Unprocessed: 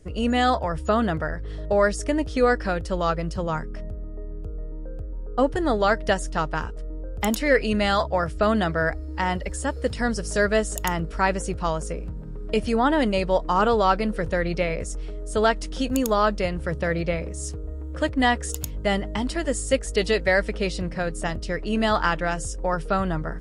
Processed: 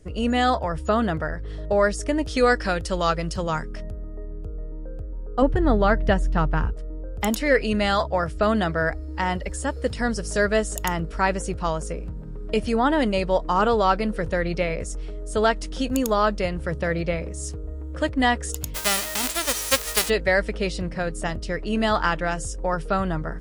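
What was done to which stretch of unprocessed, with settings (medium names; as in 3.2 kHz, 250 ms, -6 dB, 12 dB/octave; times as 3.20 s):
2.25–4.26 s: treble shelf 2.1 kHz +8.5 dB
5.42–6.73 s: tone controls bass +9 dB, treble -12 dB
18.74–20.08 s: formants flattened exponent 0.1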